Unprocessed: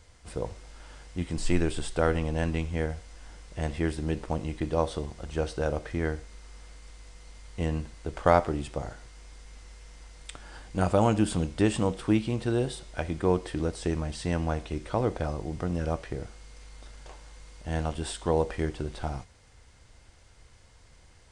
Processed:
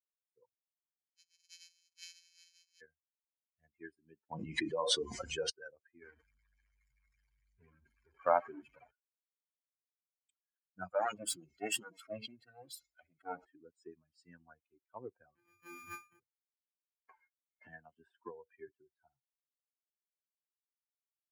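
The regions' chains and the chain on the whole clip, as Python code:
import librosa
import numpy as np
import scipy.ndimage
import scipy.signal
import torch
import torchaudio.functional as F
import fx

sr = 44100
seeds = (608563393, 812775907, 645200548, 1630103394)

y = fx.chain(x, sr, fx.sample_sort(block=256),
    fx.bandpass_q(hz=5300.0, q=1.0),
    fx.env_flatten(amount_pct=50), at=(1.04, 2.81))
y = fx.chain(y, sr, fx.doubler(ms=31.0, db=-10.5),
    fx.env_flatten(amount_pct=100), at=(4.3, 5.5))
y = fx.chain(y, sr, fx.delta_mod(bps=64000, step_db=-21.5),
    fx.high_shelf(hz=2800.0, db=-12.0), at=(6.02, 8.91))
y = fx.chain(y, sr, fx.lower_of_two(delay_ms=1.5),
    fx.peak_eq(hz=320.0, db=10.0, octaves=0.32),
    fx.sustainer(db_per_s=30.0), at=(10.93, 13.45))
y = fx.chain(y, sr, fx.sample_sort(block=256),
    fx.room_flutter(wall_m=5.4, rt60_s=0.65), at=(15.35, 16.2))
y = fx.chain(y, sr, fx.gate_hold(open_db=-38.0, close_db=-43.0, hold_ms=71.0, range_db=-21, attack_ms=1.4, release_ms=100.0),
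    fx.peak_eq(hz=7900.0, db=-3.5, octaves=0.75),
    fx.band_squash(depth_pct=100), at=(17.08, 18.68))
y = fx.bin_expand(y, sr, power=3.0)
y = fx.weighting(y, sr, curve='A')
y = fx.band_widen(y, sr, depth_pct=40)
y = y * 10.0 ** (-5.0 / 20.0)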